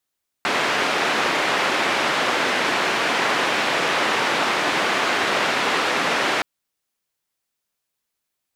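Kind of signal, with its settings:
band-limited noise 260–2,200 Hz, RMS −21 dBFS 5.97 s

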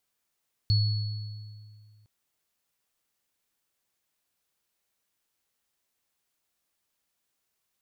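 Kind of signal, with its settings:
inharmonic partials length 1.36 s, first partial 106 Hz, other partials 4,390 Hz, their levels −7.5 dB, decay 2.14 s, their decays 1.63 s, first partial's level −19 dB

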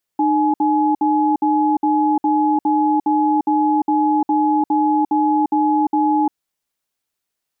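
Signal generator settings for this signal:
tone pair in a cadence 304 Hz, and 844 Hz, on 0.35 s, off 0.06 s, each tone −16 dBFS 6.09 s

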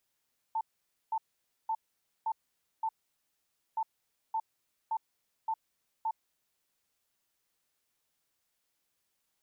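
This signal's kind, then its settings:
beeps in groups sine 889 Hz, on 0.06 s, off 0.51 s, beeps 5, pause 0.88 s, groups 2, −28.5 dBFS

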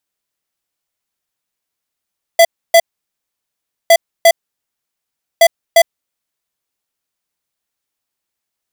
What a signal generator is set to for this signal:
beeps in groups square 670 Hz, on 0.06 s, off 0.29 s, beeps 2, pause 1.10 s, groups 3, −6 dBFS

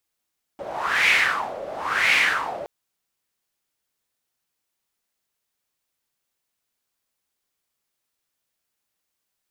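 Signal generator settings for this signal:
wind from filtered noise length 2.07 s, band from 570 Hz, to 2,300 Hz, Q 5, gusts 2, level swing 16 dB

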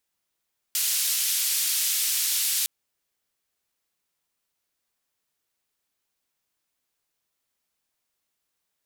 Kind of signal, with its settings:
band-limited noise 3,100–15,000 Hz, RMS −25 dBFS 1.91 s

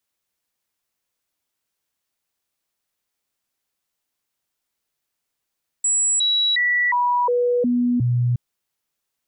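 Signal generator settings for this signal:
stepped sweep 7,800 Hz down, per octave 1, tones 7, 0.36 s, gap 0.00 s −16 dBFS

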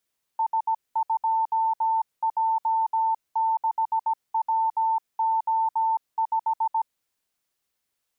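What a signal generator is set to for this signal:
Morse code "S2J6WO5" 17 words per minute 894 Hz −20 dBFS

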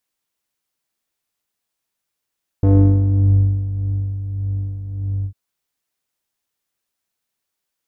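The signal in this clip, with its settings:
subtractive patch with tremolo G2, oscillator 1 square, filter lowpass, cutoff 110 Hz, Q 1.1, filter envelope 2 octaves, filter decay 0.86 s, filter sustain 20%, attack 1.5 ms, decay 1.42 s, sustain −13 dB, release 0.08 s, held 2.62 s, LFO 1.7 Hz, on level 5.5 dB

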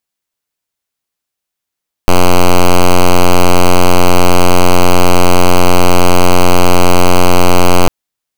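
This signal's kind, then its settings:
pulse wave 89.4 Hz, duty 5% −3.5 dBFS 5.80 s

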